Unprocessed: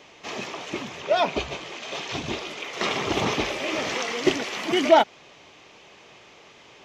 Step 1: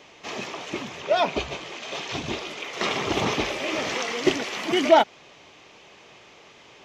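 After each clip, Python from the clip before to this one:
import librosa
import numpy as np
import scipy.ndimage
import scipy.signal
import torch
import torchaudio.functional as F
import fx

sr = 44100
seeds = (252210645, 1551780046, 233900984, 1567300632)

y = x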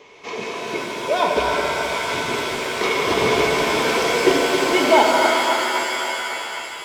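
y = fx.reverse_delay_fb(x, sr, ms=135, feedback_pct=73, wet_db=-6.5)
y = fx.small_body(y, sr, hz=(450.0, 1000.0, 2200.0), ring_ms=45, db=13)
y = fx.rev_shimmer(y, sr, seeds[0], rt60_s=3.1, semitones=7, shimmer_db=-2, drr_db=2.5)
y = y * 10.0 ** (-1.5 / 20.0)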